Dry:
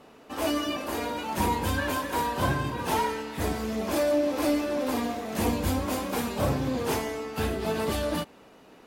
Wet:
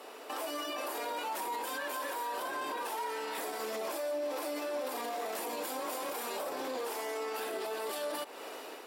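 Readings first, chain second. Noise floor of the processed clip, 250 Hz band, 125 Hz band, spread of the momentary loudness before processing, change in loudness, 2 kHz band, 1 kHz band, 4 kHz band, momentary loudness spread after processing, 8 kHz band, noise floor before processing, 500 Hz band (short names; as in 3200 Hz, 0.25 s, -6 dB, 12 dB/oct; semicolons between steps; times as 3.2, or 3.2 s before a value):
-47 dBFS, -17.0 dB, under -35 dB, 6 LU, -8.5 dB, -6.5 dB, -6.0 dB, -6.0 dB, 1 LU, -5.0 dB, -53 dBFS, -7.5 dB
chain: HPF 350 Hz 24 dB/oct; compressor 6:1, threshold -41 dBFS, peak gain reduction 17 dB; high shelf 5400 Hz +8 dB; notch 6400 Hz, Q 12; dynamic EQ 880 Hz, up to +4 dB, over -53 dBFS, Q 0.71; AGC gain up to 6 dB; limiter -33.5 dBFS, peak gain reduction 14 dB; gain +4.5 dB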